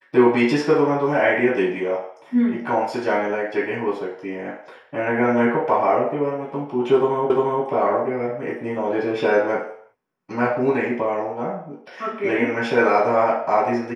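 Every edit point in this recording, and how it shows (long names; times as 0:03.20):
0:07.30: the same again, the last 0.35 s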